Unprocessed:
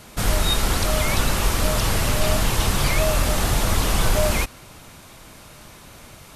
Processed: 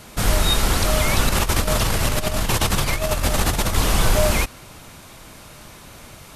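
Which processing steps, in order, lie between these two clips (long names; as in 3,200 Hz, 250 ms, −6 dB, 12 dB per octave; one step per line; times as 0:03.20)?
0:01.28–0:03.76: compressor whose output falls as the input rises −21 dBFS, ratio −0.5
level +2 dB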